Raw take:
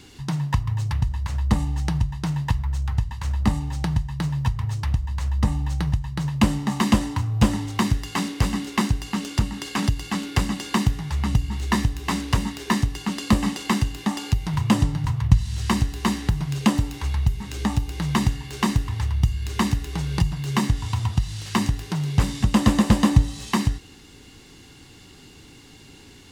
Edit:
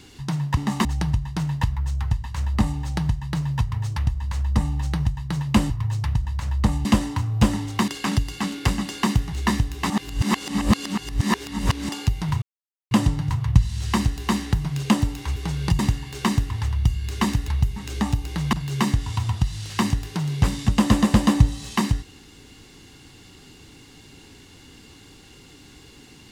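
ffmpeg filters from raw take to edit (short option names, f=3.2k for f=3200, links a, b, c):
-filter_complex "[0:a]asplit=14[a][b][c][d][e][f][g][h][i][j][k][l][m][n];[a]atrim=end=0.572[o];[b]atrim=start=6.568:end=6.852[p];[c]atrim=start=1.718:end=6.572[q];[d]atrim=start=0.568:end=1.722[r];[e]atrim=start=6.848:end=7.882[s];[f]atrim=start=9.588:end=11.042[t];[g]atrim=start=11.578:end=12.152[u];[h]atrim=start=12.148:end=14.142,asetpts=PTS-STARTPTS,areverse[v];[i]atrim=start=14.138:end=14.67,asetpts=PTS-STARTPTS,afade=t=out:st=0.528:d=0.004:c=hsin,apad=pad_dur=0.49[w];[j]atrim=start=14.67:end=17.122,asetpts=PTS-STARTPTS,afade=t=in:d=0.004:c=hsin[x];[k]atrim=start=19.858:end=20.292[y];[l]atrim=start=18.168:end=19.862[z];[m]atrim=start=17.118:end=18.172[aa];[n]atrim=start=20.288[ab];[o][p]acrossfade=d=0.004:c1=hsin:c2=hsin[ac];[ac][q]acrossfade=d=0.004:c1=hsin:c2=hsin[ad];[ad][r]acrossfade=d=0.004:c1=hsin:c2=hsin[ae];[ae][s]acrossfade=d=0.004:c1=hsin:c2=hsin[af];[af][t]acrossfade=d=0.004:c1=hsin:c2=hsin[ag];[ag][u]acrossfade=d=0.004:c1=hsin:c2=hsin[ah];[ah][v]acrossfade=d=0.004:c1=hsin:c2=hsin[ai];[w][x]concat=n=2:v=0:a=1[aj];[ai][aj]acrossfade=d=0.004:c1=hsin:c2=hsin[ak];[ak][y]acrossfade=d=0.004:c1=hsin:c2=hsin[al];[al][z]acrossfade=d=0.004:c1=hsin:c2=hsin[am];[am][aa]acrossfade=d=0.004:c1=hsin:c2=hsin[an];[an][ab]acrossfade=d=0.004:c1=hsin:c2=hsin"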